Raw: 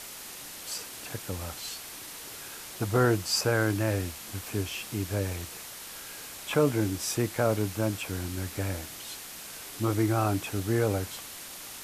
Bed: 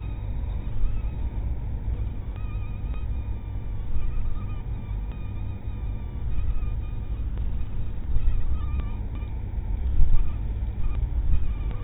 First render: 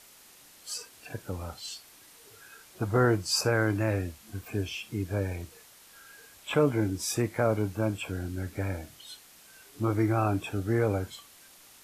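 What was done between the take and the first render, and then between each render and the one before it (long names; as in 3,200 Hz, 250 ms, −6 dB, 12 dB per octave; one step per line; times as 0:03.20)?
noise reduction from a noise print 12 dB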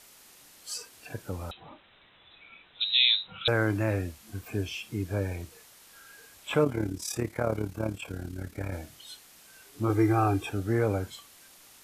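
0:01.51–0:03.48: voice inversion scrambler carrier 3,900 Hz
0:06.64–0:08.73: amplitude modulation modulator 36 Hz, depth 55%
0:09.89–0:10.50: comb filter 2.5 ms, depth 72%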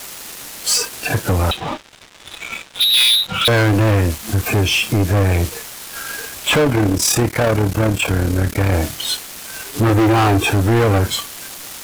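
in parallel at +1.5 dB: downward compressor 10 to 1, threshold −34 dBFS, peak gain reduction 16 dB
on the sum: leveller curve on the samples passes 5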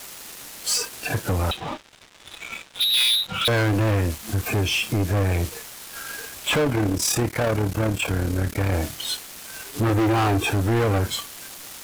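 level −6.5 dB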